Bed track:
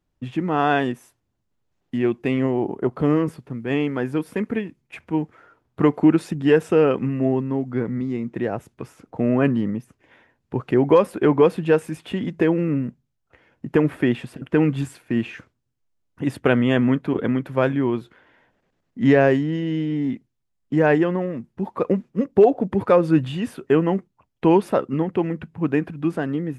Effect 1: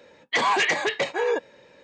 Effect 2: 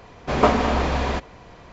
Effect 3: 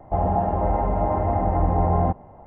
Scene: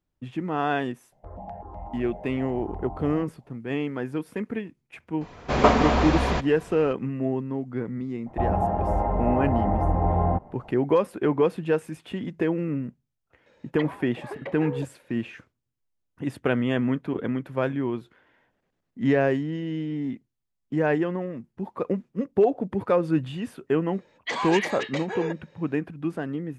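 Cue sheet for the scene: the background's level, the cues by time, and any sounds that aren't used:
bed track -6 dB
1.12 s: add 3 -15.5 dB + stepped phaser 8 Hz 310–1500 Hz
5.21 s: add 2 -0.5 dB
8.26 s: add 3 -2.5 dB
13.46 s: add 1 -9 dB + low-pass that closes with the level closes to 360 Hz, closed at -18 dBFS
23.94 s: add 1 -7 dB

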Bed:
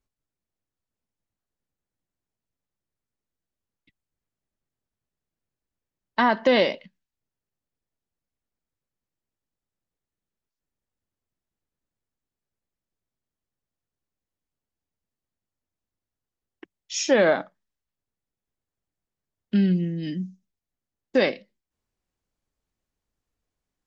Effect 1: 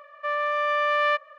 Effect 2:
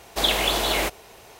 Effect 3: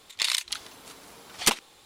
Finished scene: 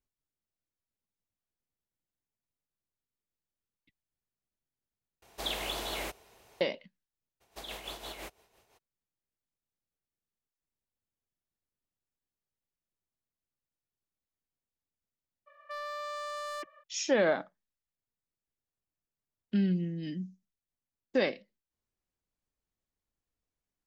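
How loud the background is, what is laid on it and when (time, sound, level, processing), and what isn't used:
bed -7.5 dB
5.22 s: replace with 2 -13.5 dB
7.40 s: add 2 -18 dB, fades 0.02 s + tremolo 5.9 Hz, depth 60%
15.46 s: add 1 -10.5 dB, fades 0.02 s + hard clipper -24 dBFS
not used: 3

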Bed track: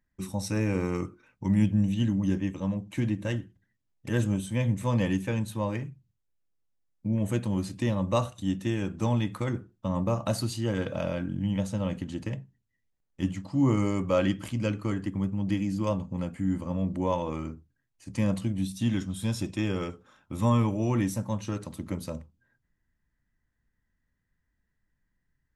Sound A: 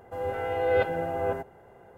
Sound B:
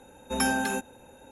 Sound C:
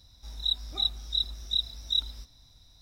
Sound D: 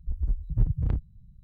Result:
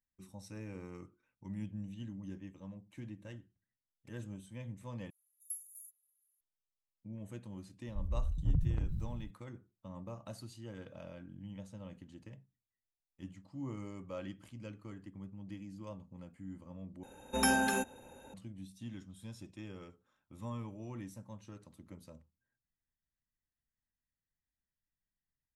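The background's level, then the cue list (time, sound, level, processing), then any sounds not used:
bed track -18.5 dB
5.10 s: replace with B -5 dB + inverse Chebyshev high-pass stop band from 2.5 kHz, stop band 80 dB
7.88 s: add D -9 dB + decay stretcher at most 31 dB/s
17.03 s: replace with B -3 dB
not used: A, C

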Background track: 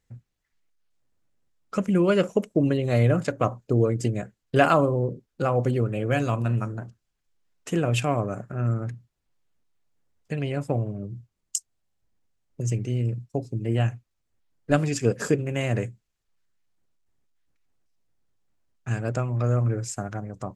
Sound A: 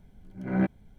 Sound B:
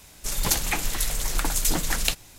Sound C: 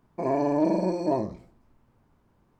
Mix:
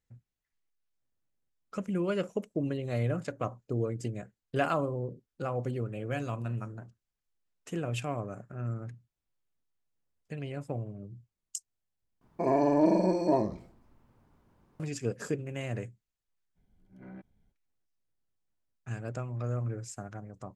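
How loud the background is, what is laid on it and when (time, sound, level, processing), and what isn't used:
background track -10 dB
12.21 s: replace with C -0.5 dB
16.55 s: add A -15.5 dB, fades 0.02 s + compression 4:1, threshold -28 dBFS
not used: B

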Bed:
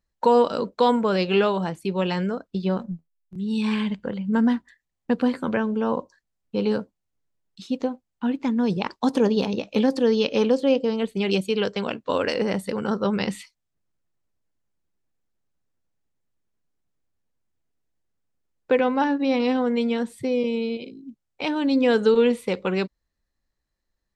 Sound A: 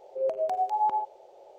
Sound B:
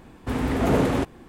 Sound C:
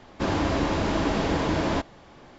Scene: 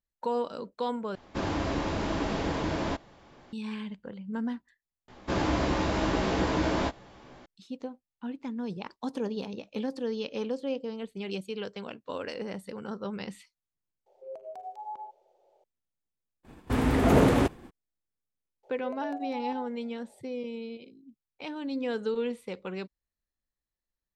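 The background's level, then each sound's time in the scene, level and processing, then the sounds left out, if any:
bed -12.5 dB
1.15 s: replace with C -5.5 dB
5.08 s: replace with C -3.5 dB + doubling 16 ms -5 dB
14.06 s: add A -14 dB
16.43 s: add B, fades 0.02 s + expander -44 dBFS
18.63 s: add A -10.5 dB

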